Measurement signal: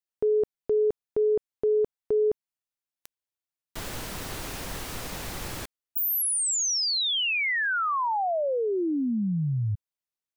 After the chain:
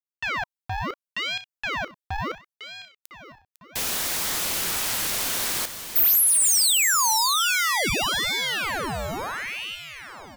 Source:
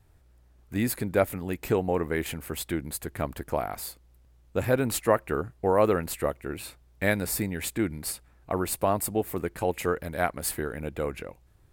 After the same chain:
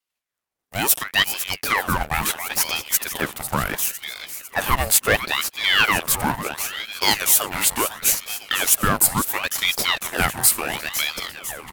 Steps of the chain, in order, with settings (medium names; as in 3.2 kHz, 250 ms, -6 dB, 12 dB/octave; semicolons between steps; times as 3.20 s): expander -52 dBFS, range -9 dB; high-pass 72 Hz 12 dB/octave; Chebyshev shaper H 2 -15 dB, 3 -24 dB, 4 -25 dB, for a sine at -7.5 dBFS; bass shelf 240 Hz -10 dB; waveshaping leveller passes 3; tilt EQ +2 dB/octave; feedback delay 502 ms, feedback 58%, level -11 dB; ring modulator with a swept carrier 1.6 kHz, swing 80%, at 0.72 Hz; trim +2.5 dB